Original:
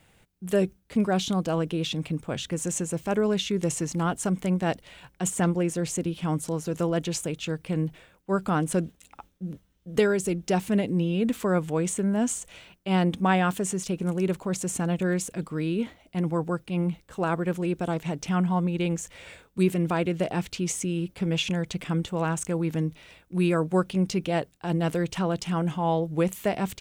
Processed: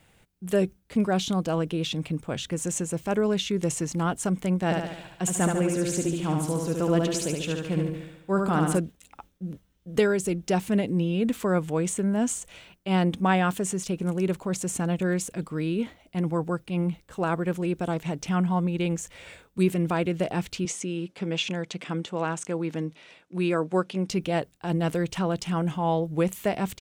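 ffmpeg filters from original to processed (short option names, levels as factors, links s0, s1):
-filter_complex "[0:a]asplit=3[s0][s1][s2];[s0]afade=t=out:st=4.7:d=0.02[s3];[s1]aecho=1:1:72|144|216|288|360|432|504:0.668|0.361|0.195|0.105|0.0568|0.0307|0.0166,afade=t=in:st=4.7:d=0.02,afade=t=out:st=8.77:d=0.02[s4];[s2]afade=t=in:st=8.77:d=0.02[s5];[s3][s4][s5]amix=inputs=3:normalize=0,asettb=1/sr,asplit=3[s6][s7][s8];[s6]atrim=end=20.654[s9];[s7]atrim=start=20.65:end=24.1,asetpts=PTS-STARTPTS,afade=t=in:d=0.004:c=qsin,afade=t=out:st=3.446:d=0.004:c=qsin,highpass=210,lowpass=7500[s10];[s8]atrim=start=24.096[s11];[s9][s10]acrossfade=d=0.004:c1=hsin:c2=qsin[s12];[s12][s11]acrossfade=d=0.004:c1=qsin:c2=hsin"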